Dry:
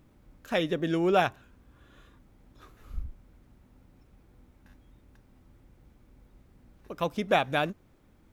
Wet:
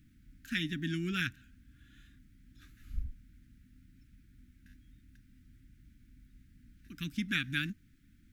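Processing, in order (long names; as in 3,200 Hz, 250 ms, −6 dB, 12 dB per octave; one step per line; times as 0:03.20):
elliptic band-stop filter 280–1,600 Hz, stop band 40 dB
level −1 dB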